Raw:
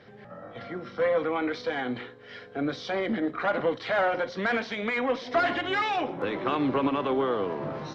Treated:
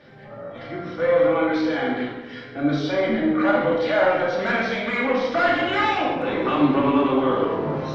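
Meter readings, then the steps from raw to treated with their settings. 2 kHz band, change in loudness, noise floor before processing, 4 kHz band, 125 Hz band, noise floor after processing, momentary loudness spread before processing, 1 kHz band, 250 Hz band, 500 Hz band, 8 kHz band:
+5.5 dB, +7.0 dB, −48 dBFS, +5.0 dB, +8.5 dB, −39 dBFS, 13 LU, +5.5 dB, +8.5 dB, +7.0 dB, can't be measured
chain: rectangular room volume 750 cubic metres, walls mixed, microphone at 2.5 metres

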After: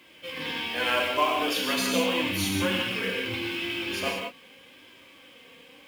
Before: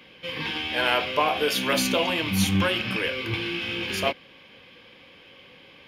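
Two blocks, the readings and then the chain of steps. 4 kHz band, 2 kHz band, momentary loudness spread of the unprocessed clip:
−2.0 dB, −2.0 dB, 6 LU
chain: high-pass filter 72 Hz
flanger 0.82 Hz, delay 2.9 ms, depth 1.6 ms, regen +26%
in parallel at −4.5 dB: log-companded quantiser 4 bits
on the sum: reverb whose tail is shaped and stops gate 210 ms flat, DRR 0 dB
level −5.5 dB

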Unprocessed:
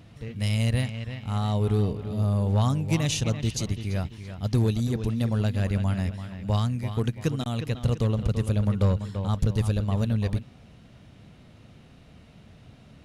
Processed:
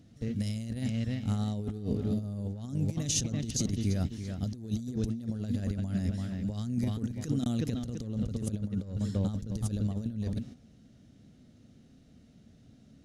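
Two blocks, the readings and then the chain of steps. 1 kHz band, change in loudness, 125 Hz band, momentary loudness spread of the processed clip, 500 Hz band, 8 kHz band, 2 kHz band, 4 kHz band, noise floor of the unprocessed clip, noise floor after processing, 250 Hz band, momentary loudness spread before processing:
−14.0 dB, −6.5 dB, −8.5 dB, 6 LU, −9.5 dB, +1.0 dB, −12.0 dB, −6.5 dB, −52 dBFS, −58 dBFS, −3.0 dB, 7 LU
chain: noise gate −42 dBFS, range −9 dB
graphic EQ with 15 bands 250 Hz +9 dB, 1,000 Hz −11 dB, 2,500 Hz −7 dB, 6,300 Hz +7 dB
compressor whose output falls as the input rises −26 dBFS, ratio −0.5
level −4.5 dB

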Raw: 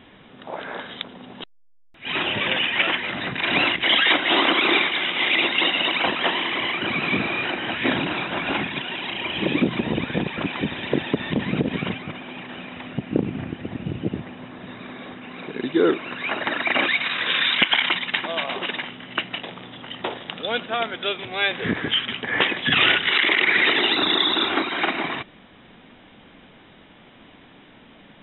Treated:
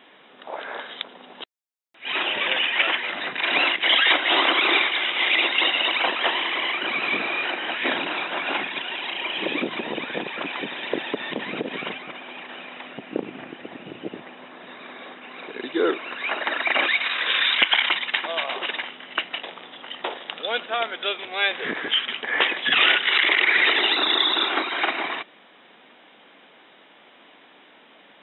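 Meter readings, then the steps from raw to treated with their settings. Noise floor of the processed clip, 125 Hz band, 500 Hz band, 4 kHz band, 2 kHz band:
−52 dBFS, −17.0 dB, −2.5 dB, 0.0 dB, 0.0 dB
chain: high-pass filter 420 Hz 12 dB per octave

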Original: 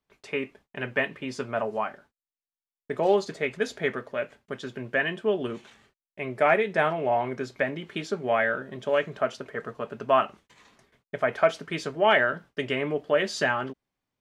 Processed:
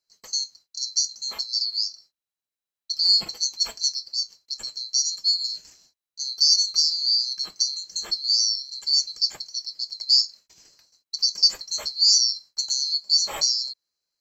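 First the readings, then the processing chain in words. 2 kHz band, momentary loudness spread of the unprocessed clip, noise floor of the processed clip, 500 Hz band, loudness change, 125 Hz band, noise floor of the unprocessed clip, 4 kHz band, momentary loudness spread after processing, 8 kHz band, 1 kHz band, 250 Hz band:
below −20 dB, 14 LU, below −85 dBFS, below −25 dB, +6.0 dB, below −20 dB, below −85 dBFS, +20.0 dB, 13 LU, can't be measured, below −15 dB, below −20 dB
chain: neighbouring bands swapped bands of 4,000 Hz
level +2.5 dB

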